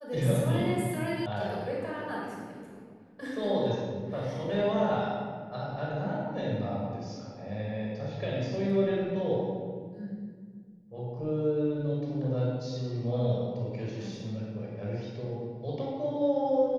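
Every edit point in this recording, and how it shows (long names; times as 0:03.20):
0:01.26: cut off before it has died away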